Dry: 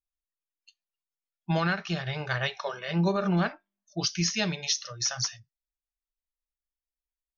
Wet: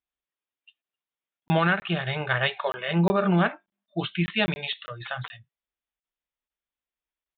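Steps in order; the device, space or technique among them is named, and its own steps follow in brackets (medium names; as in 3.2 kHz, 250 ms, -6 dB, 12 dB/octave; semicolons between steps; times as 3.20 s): call with lost packets (high-pass 140 Hz 6 dB/octave; resampled via 8 kHz; lost packets); trim +5.5 dB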